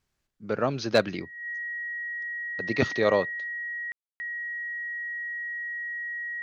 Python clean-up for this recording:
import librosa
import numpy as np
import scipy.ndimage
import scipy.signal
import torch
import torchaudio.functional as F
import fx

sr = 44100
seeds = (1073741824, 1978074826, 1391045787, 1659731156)

y = fx.fix_declip(x, sr, threshold_db=-9.0)
y = fx.notch(y, sr, hz=1900.0, q=30.0)
y = fx.fix_ambience(y, sr, seeds[0], print_start_s=0.0, print_end_s=0.5, start_s=3.92, end_s=4.2)